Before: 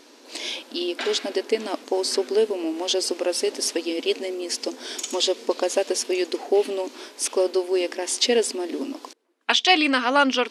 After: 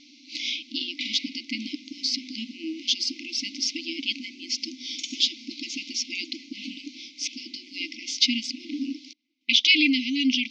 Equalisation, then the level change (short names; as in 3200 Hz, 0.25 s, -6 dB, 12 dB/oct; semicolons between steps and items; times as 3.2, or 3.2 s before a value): brick-wall FIR band-stop 320–2000 Hz; steep low-pass 5900 Hz 48 dB/oct; +1.5 dB